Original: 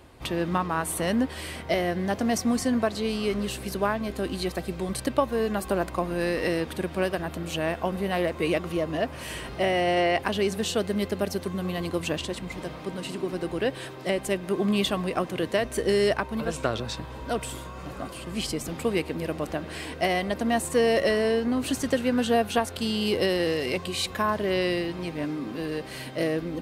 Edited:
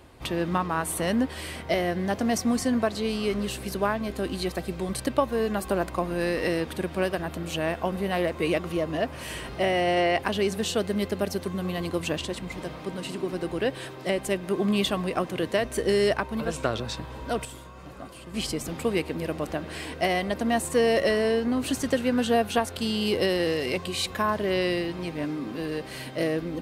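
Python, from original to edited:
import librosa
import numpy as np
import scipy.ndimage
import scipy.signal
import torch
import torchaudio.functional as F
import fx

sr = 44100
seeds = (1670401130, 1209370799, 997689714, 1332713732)

y = fx.edit(x, sr, fx.clip_gain(start_s=17.45, length_s=0.89, db=-6.0), tone=tone)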